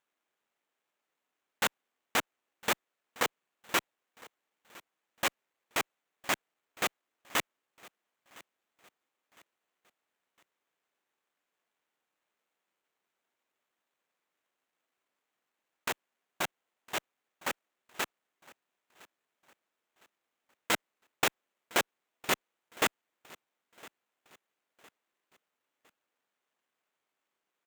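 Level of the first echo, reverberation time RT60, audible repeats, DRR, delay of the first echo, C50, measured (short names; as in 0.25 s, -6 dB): -23.0 dB, none, 2, none, 1.009 s, none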